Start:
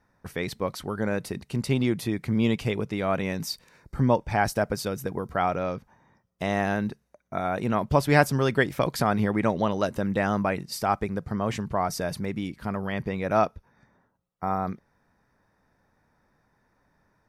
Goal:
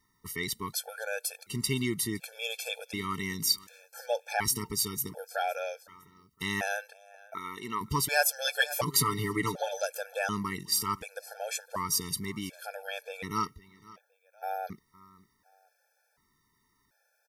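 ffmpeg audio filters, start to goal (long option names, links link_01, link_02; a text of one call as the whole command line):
ffmpeg -i in.wav -filter_complex "[0:a]crystalizer=i=8:c=0,asplit=2[link_01][link_02];[link_02]aecho=0:1:511|1022:0.0794|0.0278[link_03];[link_01][link_03]amix=inputs=2:normalize=0,asoftclip=type=tanh:threshold=-4.5dB,asettb=1/sr,asplit=3[link_04][link_05][link_06];[link_04]atrim=end=6.814[link_07];[link_05]atrim=start=6.81:end=7.81,asetpts=PTS-STARTPTS,afade=type=in:duration=0.004:curve=qsin,afade=type=out:start_time=0.996:duration=0.004:curve=qsin,bass=frequency=250:gain=-14,treble=frequency=4000:gain=-6[link_08];[link_06]atrim=start=7.806[link_09];[link_07][link_08]acrossfade=duration=0.004:curve1=hsin:curve2=qsin[link_10];[link_10][link_09]acrossfade=duration=0.004:curve1=qsin:curve2=hsin,asettb=1/sr,asplit=3[link_11][link_12][link_13];[link_11]atrim=end=8.444[link_14];[link_12]atrim=start=8.44:end=9.81,asetpts=PTS-STARTPTS,afade=type=in:duration=0.004:curve=qsin,afade=type=out:start_time=1.366:duration=0.004:curve=qsin,aecho=1:1:6.9:0.81,atrim=end_sample=60417[link_15];[link_13]atrim=start=9.806[link_16];[link_14][link_15]acrossfade=duration=0.004:curve1=hsin:curve2=qsin[link_17];[link_17][link_16]acrossfade=duration=0.004:curve1=qsin:curve2=hsin,afftfilt=real='re*gt(sin(2*PI*0.68*pts/sr)*(1-2*mod(floor(b*sr/1024/450),2)),0)':imag='im*gt(sin(2*PI*0.68*pts/sr)*(1-2*mod(floor(b*sr/1024/450),2)),0)':win_size=1024:overlap=0.75,volume=-7dB" out.wav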